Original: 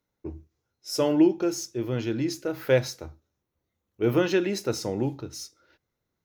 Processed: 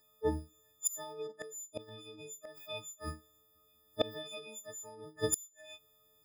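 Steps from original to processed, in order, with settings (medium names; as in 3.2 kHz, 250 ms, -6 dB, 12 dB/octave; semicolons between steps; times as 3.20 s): partials quantised in pitch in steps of 6 st; inverted gate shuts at -22 dBFS, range -28 dB; formant shift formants +6 st; trim +5 dB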